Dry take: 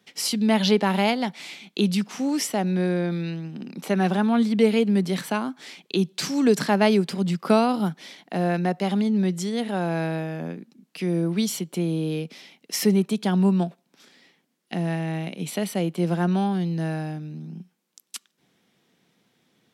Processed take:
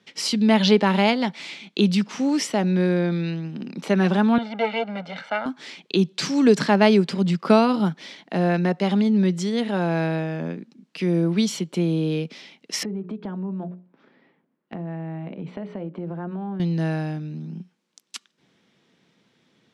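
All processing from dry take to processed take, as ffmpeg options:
-filter_complex "[0:a]asettb=1/sr,asplit=3[s0][s1][s2];[s0]atrim=end=4.384[s3];[s1]atrim=start=4.38:end=5.46,asetpts=PTS-STARTPTS,afade=t=in:d=0.004:c=qsin,afade=t=out:st=1.076:d=0.004:c=qsin,aeval=exprs='if(lt(val(0),0),0.251*val(0),val(0))':c=same,highpass=400,lowpass=2600,aecho=1:1:1.4:0.92,atrim=end_sample=47628[s4];[s2]atrim=start=5.456[s5];[s3][s4]acrossfade=d=0.004:c1=hsin:c2=qsin[s6];[s6][s5]acrossfade=d=0.004:c1=qsin:c2=hsin,asettb=1/sr,asplit=3[s7][s8][s9];[s7]atrim=end=12.834[s10];[s8]atrim=start=12.83:end=16.6,asetpts=PTS-STARTPTS,afade=t=in:d=0.004:c=qsin,afade=t=out:st=3.766:d=0.004:c=qsin,lowpass=1300,bandreject=f=60:t=h:w=6,bandreject=f=120:t=h:w=6,bandreject=f=180:t=h:w=6,bandreject=f=240:t=h:w=6,bandreject=f=300:t=h:w=6,bandreject=f=360:t=h:w=6,bandreject=f=420:t=h:w=6,bandreject=f=480:t=h:w=6,bandreject=f=540:t=h:w=6,bandreject=f=600:t=h:w=6,acompressor=threshold=0.0251:ratio=4:attack=3.2:release=140:knee=1:detection=peak[s11];[s9]atrim=start=16.596[s12];[s10][s11]acrossfade=d=0.004:c1=hsin:c2=qsin[s13];[s13][s12]acrossfade=d=0.004:c1=qsin:c2=hsin,lowpass=6100,bandreject=f=740:w=12,volume=1.41"

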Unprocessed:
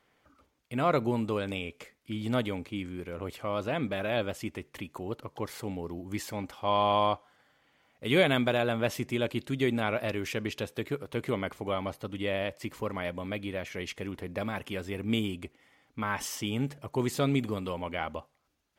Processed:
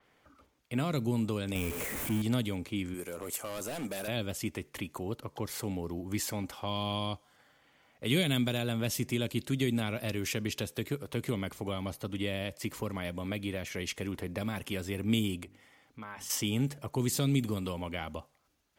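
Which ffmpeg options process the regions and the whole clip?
-filter_complex "[0:a]asettb=1/sr,asplit=3[s0][s1][s2];[s0]atrim=end=1.554[s3];[s1]atrim=start=1.55:end=2.22,asetpts=PTS-STARTPTS,afade=t=in:d=0.004:c=qsin,afade=t=out:st=0.666:d=0.004:c=qsin,aeval=exprs='val(0)+0.5*0.0237*sgn(val(0))':c=same,equalizer=f=4600:t=o:w=1.1:g=-12.5[s4];[s2]atrim=start=2.216[s5];[s3][s4]acrossfade=d=0.004:c1=hsin:c2=qsin[s6];[s6][s5]acrossfade=d=0.004:c1=qsin:c2=hsin,asettb=1/sr,asplit=3[s7][s8][s9];[s7]atrim=end=2.944[s10];[s8]atrim=start=2.94:end=4.08,asetpts=PTS-STARTPTS,afade=t=in:d=0.004:c=qsin,afade=t=out:st=1.136:d=0.004:c=qsin,highpass=f=320:p=1,highshelf=f=5600:t=q:w=1.5:g=11,asoftclip=type=hard:threshold=0.0224[s11];[s9]atrim=start=4.076[s12];[s10][s11]acrossfade=d=0.004:c1=hsin:c2=qsin[s13];[s13][s12]acrossfade=d=0.004:c1=qsin:c2=hsin,asettb=1/sr,asplit=3[s14][s15][s16];[s14]atrim=end=15.434[s17];[s15]atrim=start=15.43:end=16.3,asetpts=PTS-STARTPTS,afade=t=in:d=0.004:c=qsin,afade=t=out:st=0.866:d=0.004:c=qsin,bandreject=f=50:t=h:w=6,bandreject=f=100:t=h:w=6,bandreject=f=150:t=h:w=6,bandreject=f=200:t=h:w=6,bandreject=f=250:t=h:w=6,bandreject=f=300:t=h:w=6,acompressor=threshold=0.00224:ratio=2:attack=3.2:release=140:knee=1:detection=peak,asoftclip=type=hard:threshold=0.0224[s18];[s16]atrim=start=16.296[s19];[s17][s18]acrossfade=d=0.004:c1=hsin:c2=qsin[s20];[s20][s19]acrossfade=d=0.004:c1=qsin:c2=hsin,acrossover=split=280|3000[s21][s22][s23];[s22]acompressor=threshold=0.0112:ratio=6[s24];[s21][s24][s23]amix=inputs=3:normalize=0,adynamicequalizer=threshold=0.00224:dfrequency=5100:dqfactor=0.7:tfrequency=5100:tqfactor=0.7:attack=5:release=100:ratio=0.375:range=3:mode=boostabove:tftype=highshelf,volume=1.26"

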